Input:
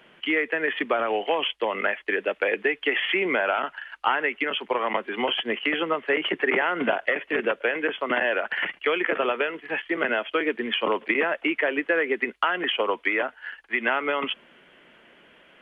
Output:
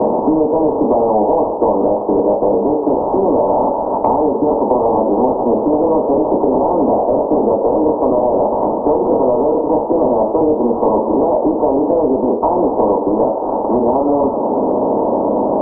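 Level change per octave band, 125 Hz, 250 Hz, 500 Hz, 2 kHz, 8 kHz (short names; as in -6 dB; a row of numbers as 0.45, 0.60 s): +21.0 dB, +16.5 dB, +14.5 dB, under -30 dB, n/a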